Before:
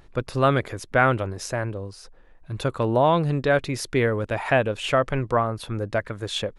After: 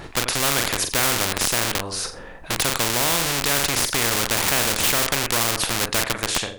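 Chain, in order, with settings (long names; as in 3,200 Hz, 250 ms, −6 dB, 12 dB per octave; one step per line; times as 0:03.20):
fade-out on the ending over 0.52 s
de-essing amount 60%
flutter between parallel walls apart 7.3 metres, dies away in 0.3 s
in parallel at −5 dB: comparator with hysteresis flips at −26 dBFS
on the sum: every bin compressed towards the loudest bin 4 to 1
level +3 dB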